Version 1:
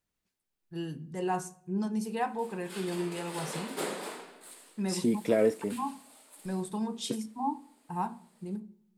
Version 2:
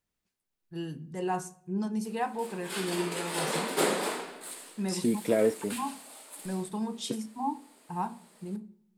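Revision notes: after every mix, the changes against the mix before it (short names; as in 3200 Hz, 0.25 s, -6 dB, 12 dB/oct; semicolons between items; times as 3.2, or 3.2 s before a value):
background +8.0 dB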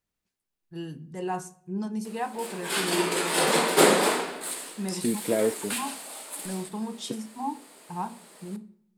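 background +8.5 dB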